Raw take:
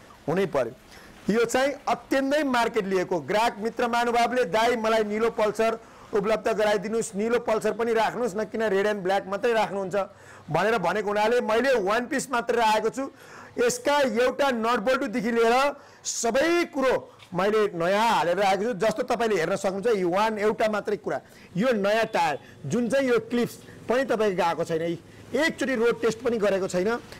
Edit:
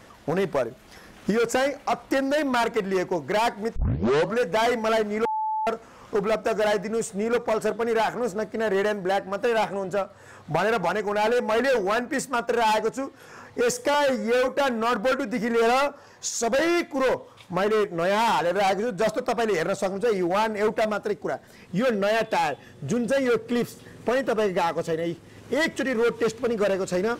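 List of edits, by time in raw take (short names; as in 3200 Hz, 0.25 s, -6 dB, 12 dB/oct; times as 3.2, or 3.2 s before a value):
3.76 tape start 0.64 s
5.25–5.67 bleep 870 Hz -23.5 dBFS
13.94–14.3 stretch 1.5×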